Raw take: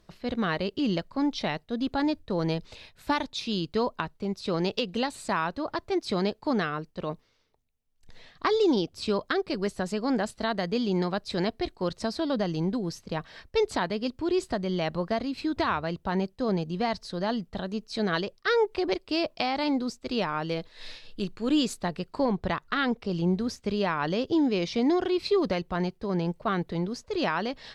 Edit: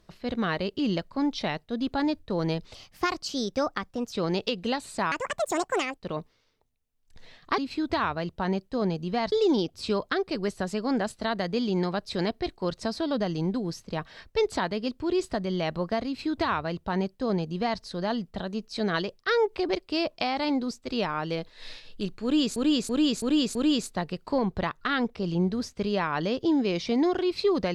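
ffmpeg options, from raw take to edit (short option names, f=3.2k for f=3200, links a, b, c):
-filter_complex "[0:a]asplit=11[a][b][c][d][e][f][g][h][i][j][k];[a]atrim=end=2.744[l];[b]atrim=start=2.74:end=4.43,asetpts=PTS-STARTPTS,asetrate=53802,aresample=44100,atrim=end_sample=61089,asetpts=PTS-STARTPTS[m];[c]atrim=start=4.426:end=5.424[n];[d]atrim=start=5.42:end=6.9,asetpts=PTS-STARTPTS,asetrate=76293,aresample=44100,atrim=end_sample=37727,asetpts=PTS-STARTPTS[o];[e]atrim=start=6.896:end=8.512[p];[f]atrim=start=15.248:end=16.992[q];[g]atrim=start=8.508:end=21.752[r];[h]atrim=start=21.418:end=21.752[s];[i]atrim=start=21.418:end=21.752[t];[j]atrim=start=21.418:end=21.752[u];[k]atrim=start=21.418[v];[l][m]acrossfade=d=0.004:c1=hsin:c2=hsin[w];[w][n]acrossfade=d=0.004:c1=hsin:c2=hsin[x];[x][o]acrossfade=d=0.004:c1=hsin:c2=hsin[y];[y][p]acrossfade=d=0.004:c1=hsin:c2=hsin[z];[z][q]acrossfade=d=0.004:c1=hsin:c2=hsin[aa];[aa][r]acrossfade=d=0.004:c1=hsin:c2=hsin[ab];[ab][s]acrossfade=d=0.004:c1=hsin:c2=hsin[ac];[ac][t]acrossfade=d=0.004:c1=hsin:c2=hsin[ad];[ad][u]acrossfade=d=0.004:c1=hsin:c2=hsin[ae];[ae][v]acrossfade=d=0.004:c1=hsin:c2=hsin"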